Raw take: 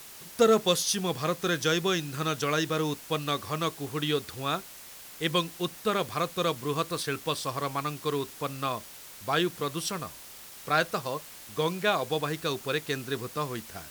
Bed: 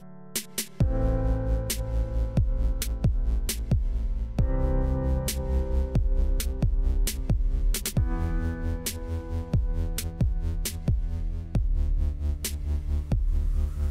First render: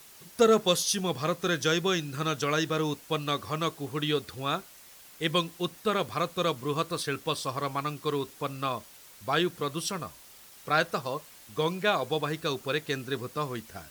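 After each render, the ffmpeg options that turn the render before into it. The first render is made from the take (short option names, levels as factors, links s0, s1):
-af "afftdn=nr=6:nf=-47"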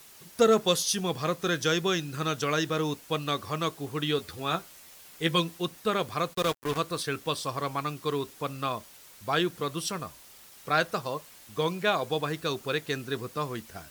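-filter_complex "[0:a]asettb=1/sr,asplit=3[s0][s1][s2];[s0]atrim=end=4.184[s3];[s1]atrim=start=4.18:end=5.58,asetpts=PTS-STARTPTS,afade=t=in:d=0.004:c=qsin,afade=t=out:st=1.396:d=0.004:c=qsin,asplit=2[s4][s5];[s5]adelay=12,volume=0.501[s6];[s4][s6]amix=inputs=2:normalize=0,atrim=end_sample=61740[s7];[s2]atrim=start=5.576[s8];[s3][s7]acrossfade=d=0.004:c1=hsin:c2=qsin[s9];[s9][s8]acrossfade=d=0.004:c1=qsin:c2=hsin,asplit=3[s10][s11][s12];[s10]afade=t=out:st=6.33:d=0.02[s13];[s11]acrusher=bits=4:mix=0:aa=0.5,afade=t=in:st=6.33:d=0.02,afade=t=out:st=6.77:d=0.02[s14];[s12]afade=t=in:st=6.77:d=0.02[s15];[s13][s14][s15]amix=inputs=3:normalize=0"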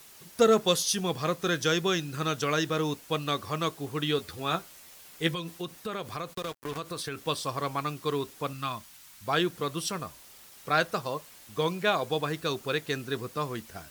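-filter_complex "[0:a]asettb=1/sr,asplit=3[s0][s1][s2];[s0]atrim=end=5.334[s3];[s1]atrim=start=5.33:end=7.2,asetpts=PTS-STARTPTS,afade=t=in:d=0.004:c=qsin,afade=t=out:st=1.866:d=0.004:c=qsin,acompressor=threshold=0.0282:ratio=5:attack=3.2:release=140:knee=1:detection=peak[s4];[s2]atrim=start=7.196[s5];[s3][s4]acrossfade=d=0.004:c1=hsin:c2=qsin[s6];[s6][s5]acrossfade=d=0.004:c1=qsin:c2=hsin,asettb=1/sr,asplit=3[s7][s8][s9];[s7]atrim=end=8.534[s10];[s8]atrim=start=8.53:end=9.26,asetpts=PTS-STARTPTS,afade=t=in:d=0.004:c=qsin,afade=t=out:st=0.726:d=0.004:c=qsin,equalizer=f=480:t=o:w=0.87:g=-14.5[s11];[s9]atrim=start=9.256[s12];[s10][s11]acrossfade=d=0.004:c1=hsin:c2=qsin[s13];[s13][s12]acrossfade=d=0.004:c1=qsin:c2=hsin"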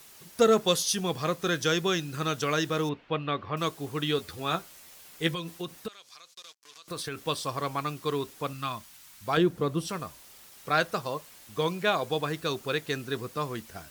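-filter_complex "[0:a]asettb=1/sr,asplit=3[s0][s1][s2];[s0]atrim=end=2.894[s3];[s1]atrim=start=2.89:end=3.57,asetpts=PTS-STARTPTS,afade=t=in:d=0.004:c=qsin,afade=t=out:st=0.676:d=0.004:c=qsin,lowpass=f=3100:w=0.5412,lowpass=f=3100:w=1.3066[s4];[s2]atrim=start=3.566[s5];[s3][s4]acrossfade=d=0.004:c1=hsin:c2=qsin[s6];[s6][s5]acrossfade=d=0.004:c1=qsin:c2=hsin,asettb=1/sr,asplit=3[s7][s8][s9];[s7]atrim=end=5.884[s10];[s8]atrim=start=5.88:end=6.88,asetpts=PTS-STARTPTS,afade=t=in:d=0.004:c=qsin,afade=t=out:st=0.996:d=0.004:c=qsin,bandpass=f=5500:t=q:w=1.6[s11];[s9]atrim=start=6.876[s12];[s10][s11]acrossfade=d=0.004:c1=hsin:c2=qsin[s13];[s13][s12]acrossfade=d=0.004:c1=qsin:c2=hsin,asettb=1/sr,asplit=3[s14][s15][s16];[s14]atrim=end=9.374[s17];[s15]atrim=start=9.37:end=9.89,asetpts=PTS-STARTPTS,afade=t=in:d=0.004:c=qsin,afade=t=out:st=0.516:d=0.004:c=qsin,tiltshelf=f=970:g=6.5[s18];[s16]atrim=start=9.886[s19];[s17][s18]acrossfade=d=0.004:c1=hsin:c2=qsin[s20];[s20][s19]acrossfade=d=0.004:c1=qsin:c2=hsin"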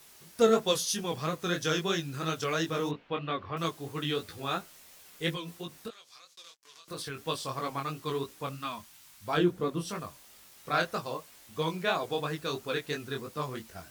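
-af "flanger=delay=18:depth=5.2:speed=3"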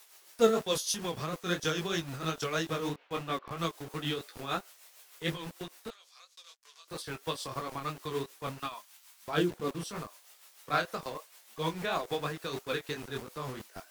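-filter_complex "[0:a]acrossover=split=420|580|7900[s0][s1][s2][s3];[s0]acrusher=bits=6:mix=0:aa=0.000001[s4];[s4][s1][s2][s3]amix=inputs=4:normalize=0,tremolo=f=6.6:d=0.52"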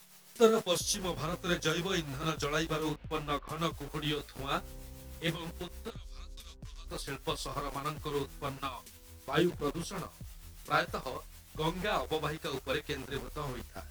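-filter_complex "[1:a]volume=0.0708[s0];[0:a][s0]amix=inputs=2:normalize=0"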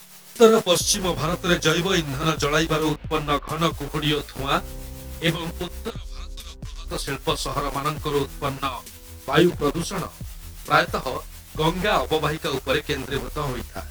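-af "volume=3.76,alimiter=limit=0.708:level=0:latency=1"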